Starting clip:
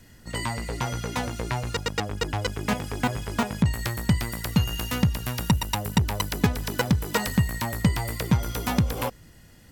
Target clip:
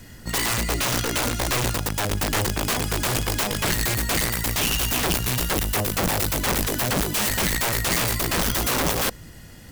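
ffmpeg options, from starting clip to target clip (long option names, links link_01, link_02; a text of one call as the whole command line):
ffmpeg -i in.wav -af "acontrast=79,aeval=exprs='(mod(8.41*val(0)+1,2)-1)/8.41':channel_layout=same,acrusher=bits=4:mode=log:mix=0:aa=0.000001,volume=1dB" out.wav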